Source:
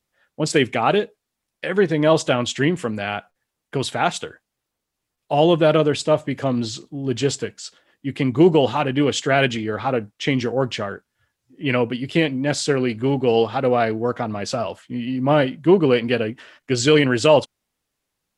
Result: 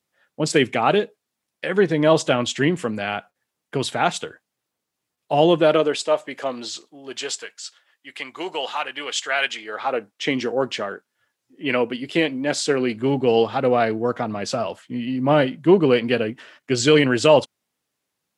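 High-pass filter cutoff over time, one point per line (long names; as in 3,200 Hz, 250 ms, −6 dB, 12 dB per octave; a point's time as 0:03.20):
0:05.33 120 Hz
0:06.07 500 Hz
0:06.72 500 Hz
0:07.55 1,000 Hz
0:09.49 1,000 Hz
0:10.25 250 Hz
0:12.60 250 Hz
0:13.20 120 Hz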